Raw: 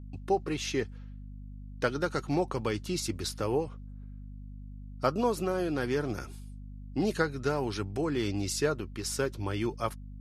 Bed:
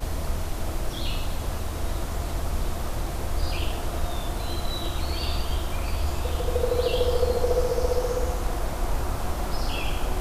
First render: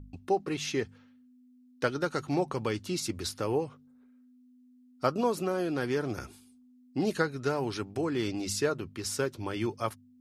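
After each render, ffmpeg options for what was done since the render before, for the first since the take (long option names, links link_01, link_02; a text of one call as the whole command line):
ffmpeg -i in.wav -af "bandreject=frequency=50:width_type=h:width=4,bandreject=frequency=100:width_type=h:width=4,bandreject=frequency=150:width_type=h:width=4,bandreject=frequency=200:width_type=h:width=4" out.wav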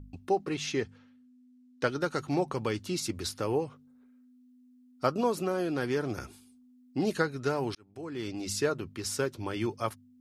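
ffmpeg -i in.wav -filter_complex "[0:a]asettb=1/sr,asplit=3[link_01][link_02][link_03];[link_01]atrim=end=0.484[link_04];[link_02]atrim=start=0.48:end=1.89,asetpts=PTS-STARTPTS,afade=type=in:duration=0.004:curve=qsin,afade=type=out:start_time=1.406:duration=0.004:curve=qsin,lowpass=9200[link_05];[link_03]atrim=start=1.886[link_06];[link_04][link_05]acrossfade=duration=0.004:curve1=hsin:curve2=qsin[link_07];[link_07][link_06]acrossfade=duration=0.004:curve1=qsin:curve2=hsin,asplit=2[link_08][link_09];[link_08]atrim=end=7.75,asetpts=PTS-STARTPTS,afade=type=out:start_time=7.746:duration=0.004:curve=hsin[link_10];[link_09]atrim=start=7.75,asetpts=PTS-STARTPTS,afade=type=in:duration=0.87[link_11];[link_10][link_11]concat=n=2:v=0:a=1" out.wav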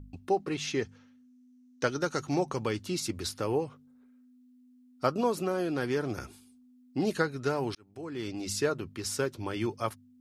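ffmpeg -i in.wav -filter_complex "[0:a]asettb=1/sr,asplit=3[link_01][link_02][link_03];[link_01]atrim=end=0.824[link_04];[link_02]atrim=start=0.82:end=2.64,asetpts=PTS-STARTPTS,afade=type=in:duration=0.004:curve=qsin,afade=type=out:start_time=1.816:duration=0.004:curve=qsin,equalizer=frequency=6100:width=3.8:gain=9.5[link_05];[link_03]atrim=start=2.636[link_06];[link_04][link_05]acrossfade=duration=0.004:curve1=hsin:curve2=qsin[link_07];[link_07][link_06]acrossfade=duration=0.004:curve1=qsin:curve2=hsin" out.wav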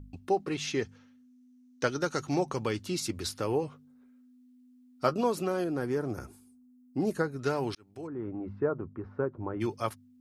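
ffmpeg -i in.wav -filter_complex "[0:a]asettb=1/sr,asplit=3[link_01][link_02][link_03];[link_01]atrim=end=3.624[link_04];[link_02]atrim=start=3.62:end=5.14,asetpts=PTS-STARTPTS,afade=type=in:duration=0.004:curve=qsin,afade=type=out:start_time=1.516:duration=0.004:curve=qsin,asplit=2[link_05][link_06];[link_06]adelay=13,volume=-8.5dB[link_07];[link_05][link_07]amix=inputs=2:normalize=0,atrim=end_sample=67032[link_08];[link_03]atrim=start=5.136[link_09];[link_04][link_08]acrossfade=duration=0.004:curve1=hsin:curve2=qsin[link_10];[link_10][link_09]acrossfade=duration=0.004:curve1=qsin:curve2=hsin,asettb=1/sr,asplit=3[link_11][link_12][link_13];[link_11]atrim=end=5.644[link_14];[link_12]atrim=start=5.64:end=7.39,asetpts=PTS-STARTPTS,afade=type=in:duration=0.004:curve=qsin,afade=type=out:start_time=1.746:duration=0.004:curve=qsin,equalizer=frequency=3300:width_type=o:width=1.6:gain=-13.5[link_15];[link_13]atrim=start=7.386[link_16];[link_14][link_15]acrossfade=duration=0.004:curve1=hsin:curve2=qsin[link_17];[link_17][link_16]acrossfade=duration=0.004:curve1=qsin:curve2=hsin,asplit=3[link_18][link_19][link_20];[link_18]afade=type=out:start_time=8.06:duration=0.02[link_21];[link_19]lowpass=frequency=1300:width=0.5412,lowpass=frequency=1300:width=1.3066,afade=type=in:start_time=8.06:duration=0.02,afade=type=out:start_time=9.6:duration=0.02[link_22];[link_20]afade=type=in:start_time=9.6:duration=0.02[link_23];[link_21][link_22][link_23]amix=inputs=3:normalize=0" out.wav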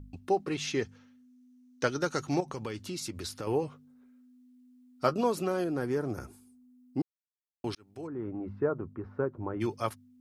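ffmpeg -i in.wav -filter_complex "[0:a]asettb=1/sr,asplit=3[link_01][link_02][link_03];[link_01]atrim=end=2.404[link_04];[link_02]atrim=start=2.4:end=3.47,asetpts=PTS-STARTPTS,afade=type=in:duration=0.004:curve=qsin,afade=type=out:start_time=1.066:duration=0.004:curve=qsin,acompressor=threshold=-35dB:ratio=2.5:attack=3.2:release=140:knee=1:detection=peak[link_05];[link_03]atrim=start=3.466[link_06];[link_04][link_05]acrossfade=duration=0.004:curve1=hsin:curve2=qsin[link_07];[link_07][link_06]acrossfade=duration=0.004:curve1=qsin:curve2=hsin,asplit=3[link_08][link_09][link_10];[link_08]atrim=end=7.02,asetpts=PTS-STARTPTS,afade=type=out:start_time=7.016:duration=0.004:curve=hsin[link_11];[link_09]atrim=start=7.02:end=7.64,asetpts=PTS-STARTPTS,volume=0[link_12];[link_10]atrim=start=7.64,asetpts=PTS-STARTPTS,afade=type=in:duration=0.004:curve=hsin[link_13];[link_11][link_12][link_13]concat=n=3:v=0:a=1" out.wav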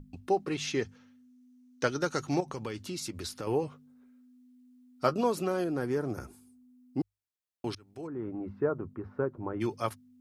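ffmpeg -i in.wav -af "bandreject=frequency=50:width_type=h:width=6,bandreject=frequency=100:width_type=h:width=6" out.wav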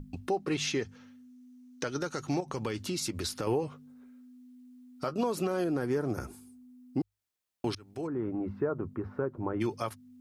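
ffmpeg -i in.wav -filter_complex "[0:a]asplit=2[link_01][link_02];[link_02]acompressor=threshold=-38dB:ratio=6,volume=-1dB[link_03];[link_01][link_03]amix=inputs=2:normalize=0,alimiter=limit=-20.5dB:level=0:latency=1:release=146" out.wav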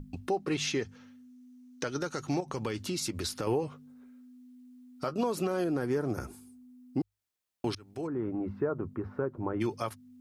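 ffmpeg -i in.wav -af anull out.wav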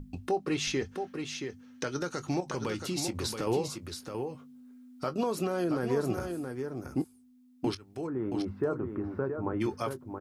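ffmpeg -i in.wav -filter_complex "[0:a]asplit=2[link_01][link_02];[link_02]adelay=23,volume=-14dB[link_03];[link_01][link_03]amix=inputs=2:normalize=0,aecho=1:1:675:0.473" out.wav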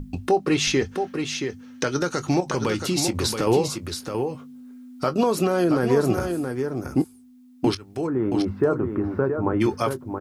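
ffmpeg -i in.wav -af "volume=9.5dB" out.wav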